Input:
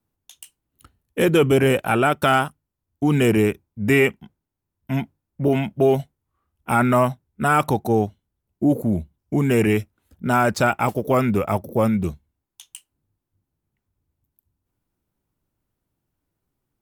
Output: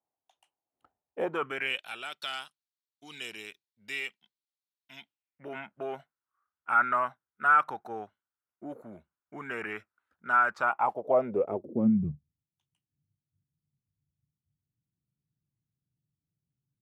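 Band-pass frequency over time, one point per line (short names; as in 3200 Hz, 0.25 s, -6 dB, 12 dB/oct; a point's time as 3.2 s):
band-pass, Q 3.5
1.23 s 740 Hz
1.87 s 4100 Hz
4.96 s 4100 Hz
5.57 s 1400 Hz
10.48 s 1400 Hz
11.63 s 370 Hz
12.05 s 140 Hz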